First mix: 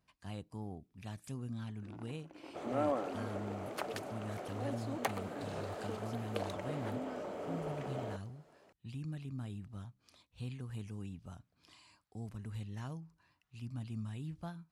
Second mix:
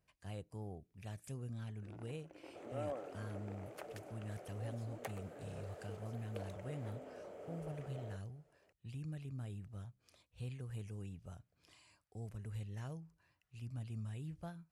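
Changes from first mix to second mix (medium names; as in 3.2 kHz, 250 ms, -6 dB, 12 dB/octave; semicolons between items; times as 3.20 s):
second sound -8.0 dB; master: add graphic EQ 250/500/1000/4000 Hz -8/+4/-7/-6 dB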